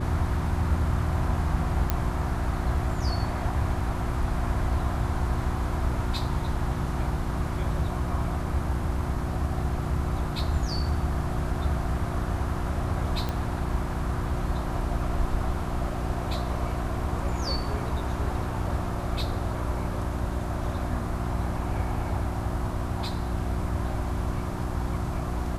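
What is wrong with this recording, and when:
mains hum 60 Hz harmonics 6 −33 dBFS
0:01.90: click −9 dBFS
0:13.29: click −16 dBFS

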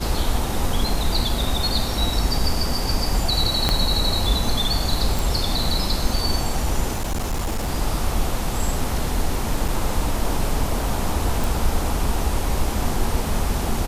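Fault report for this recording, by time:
0:03.69: click −4 dBFS
0:05.19: click
0:06.92–0:07.70: clipping −20 dBFS
0:09.68: drop-out 4.9 ms
0:11.44: click

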